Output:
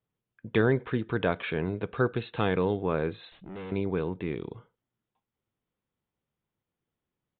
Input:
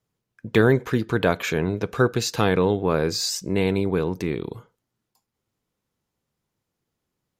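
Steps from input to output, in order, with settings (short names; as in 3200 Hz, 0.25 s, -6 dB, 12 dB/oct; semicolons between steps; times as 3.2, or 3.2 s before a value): 3.32–3.72 tube stage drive 31 dB, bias 0.25; downsampling 8000 Hz; gain -6.5 dB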